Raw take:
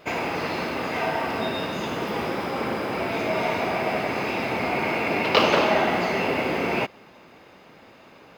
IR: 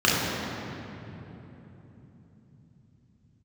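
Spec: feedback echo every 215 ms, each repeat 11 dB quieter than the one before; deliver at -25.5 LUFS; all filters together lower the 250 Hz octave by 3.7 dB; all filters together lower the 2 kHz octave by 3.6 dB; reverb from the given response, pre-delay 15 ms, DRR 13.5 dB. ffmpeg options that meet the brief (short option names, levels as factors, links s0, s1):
-filter_complex "[0:a]equalizer=f=250:t=o:g=-5,equalizer=f=2000:t=o:g=-4.5,aecho=1:1:215|430|645:0.282|0.0789|0.0221,asplit=2[s0][s1];[1:a]atrim=start_sample=2205,adelay=15[s2];[s1][s2]afir=irnorm=-1:irlink=0,volume=0.0211[s3];[s0][s3]amix=inputs=2:normalize=0,volume=1.06"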